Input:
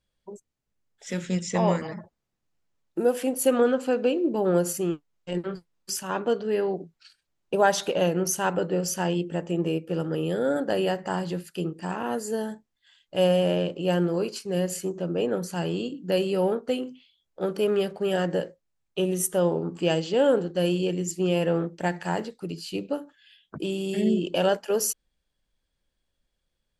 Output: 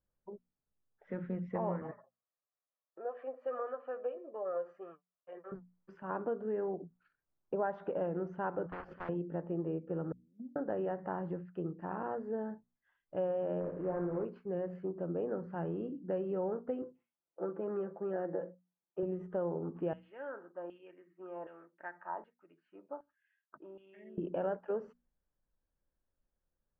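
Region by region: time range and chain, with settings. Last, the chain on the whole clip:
1.91–5.52 s: high-pass 610 Hz + comb 1.7 ms, depth 54% + flange 1.6 Hz, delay 6.6 ms, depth 1.7 ms, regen +38%
8.66–9.09 s: gate -27 dBFS, range -23 dB + spectrum-flattening compressor 10:1
10.12–10.56 s: Butterworth band-pass 230 Hz, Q 5.7 + gate -38 dBFS, range -15 dB
13.60–14.25 s: CVSD coder 16 kbps + low-pass 1.8 kHz + flutter echo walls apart 9.4 m, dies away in 0.48 s
16.82–19.03 s: band-pass 270–2800 Hz + distance through air 430 m + comb 5.9 ms, depth 60%
19.93–24.18 s: comb 3.2 ms, depth 33% + LFO band-pass saw down 1.3 Hz 870–3200 Hz
whole clip: low-pass 1.5 kHz 24 dB/octave; hum notches 60/120/180/240 Hz; compression 2.5:1, threshold -27 dBFS; trim -6.5 dB

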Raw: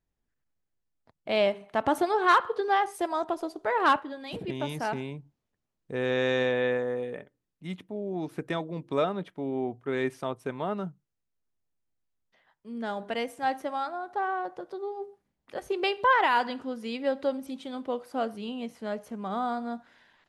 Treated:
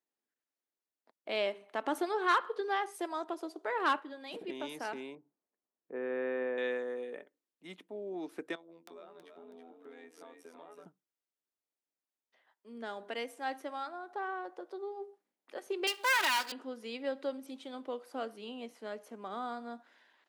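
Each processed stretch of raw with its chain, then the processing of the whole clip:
5.15–6.58 s: Bessel low-pass 1.4 kHz, order 6 + hum notches 60/120/180/240/300/360/420/480/540 Hz
8.55–10.86 s: robot voice 83.6 Hz + compression, threshold -43 dBFS + frequency-shifting echo 324 ms, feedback 36%, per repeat +31 Hz, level -6.5 dB
15.87–16.52 s: comb filter that takes the minimum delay 3.2 ms + RIAA curve recording
whole clip: high-pass 270 Hz 24 dB/octave; dynamic bell 730 Hz, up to -5 dB, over -38 dBFS, Q 1.3; trim -5 dB

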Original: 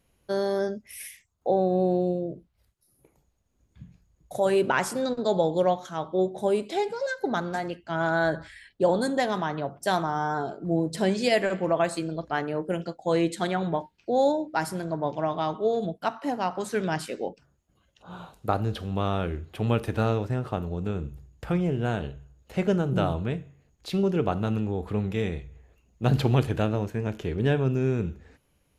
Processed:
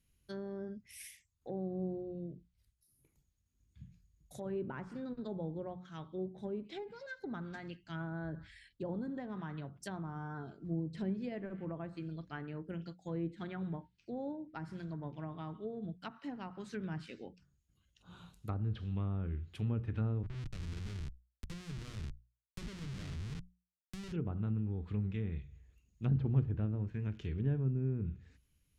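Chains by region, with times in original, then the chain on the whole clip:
20.23–24.12 s: four-pole ladder low-pass 820 Hz, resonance 30% + Schmitt trigger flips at -39 dBFS + three bands compressed up and down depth 40%
whole clip: hum notches 60/120/180 Hz; low-pass that closes with the level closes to 880 Hz, closed at -21.5 dBFS; amplifier tone stack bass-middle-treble 6-0-2; trim +8.5 dB

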